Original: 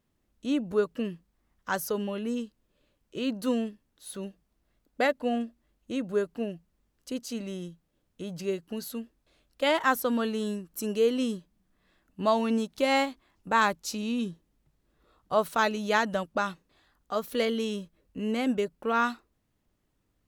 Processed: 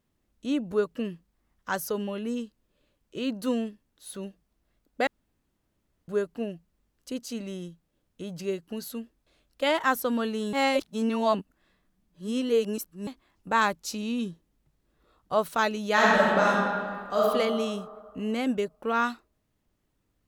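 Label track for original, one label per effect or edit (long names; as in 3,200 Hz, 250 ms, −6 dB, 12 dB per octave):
5.070000	6.080000	fill with room tone
10.530000	13.070000	reverse
15.930000	17.190000	thrown reverb, RT60 2 s, DRR −7 dB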